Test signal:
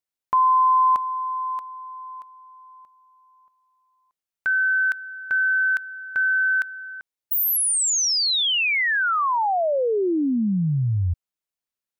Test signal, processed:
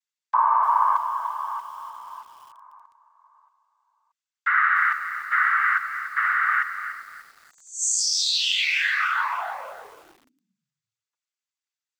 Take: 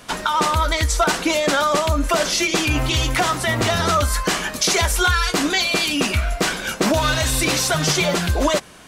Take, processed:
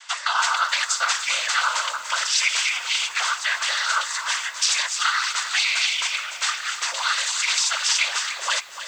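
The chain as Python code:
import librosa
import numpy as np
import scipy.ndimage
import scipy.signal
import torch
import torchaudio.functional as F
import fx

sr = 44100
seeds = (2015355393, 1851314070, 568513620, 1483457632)

y = scipy.signal.sosfilt(scipy.signal.butter(4, 1100.0, 'highpass', fs=sr, output='sos'), x)
y = fx.high_shelf(y, sr, hz=2400.0, db=3.0)
y = fx.rider(y, sr, range_db=4, speed_s=2.0)
y = fx.noise_vocoder(y, sr, seeds[0], bands=16)
y = fx.echo_crushed(y, sr, ms=296, feedback_pct=35, bits=7, wet_db=-11)
y = y * librosa.db_to_amplitude(-2.0)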